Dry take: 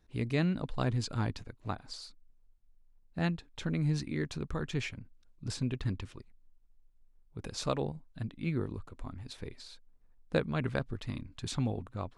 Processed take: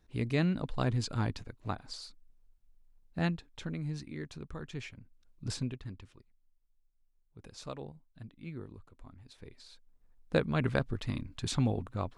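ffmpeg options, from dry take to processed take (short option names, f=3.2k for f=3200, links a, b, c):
-af "volume=21.5dB,afade=t=out:st=3.23:d=0.6:silence=0.421697,afade=t=in:st=4.95:d=0.58:silence=0.398107,afade=t=out:st=5.53:d=0.27:silence=0.281838,afade=t=in:st=9.34:d=1.33:silence=0.223872"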